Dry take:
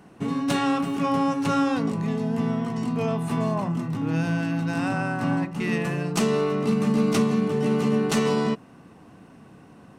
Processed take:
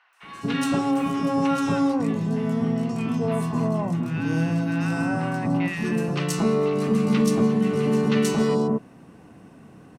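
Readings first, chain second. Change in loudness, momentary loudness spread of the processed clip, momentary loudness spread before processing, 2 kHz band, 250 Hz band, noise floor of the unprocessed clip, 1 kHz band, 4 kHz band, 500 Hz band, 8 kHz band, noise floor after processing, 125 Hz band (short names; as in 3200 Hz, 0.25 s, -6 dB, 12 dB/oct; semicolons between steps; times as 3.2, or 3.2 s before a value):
+1.0 dB, 5 LU, 5 LU, 0.0 dB, +1.5 dB, -50 dBFS, -1.0 dB, -1.0 dB, +1.0 dB, +1.0 dB, -49 dBFS, +1.5 dB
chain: three bands offset in time mids, highs, lows 0.13/0.23 s, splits 1100/3900 Hz; gain +1.5 dB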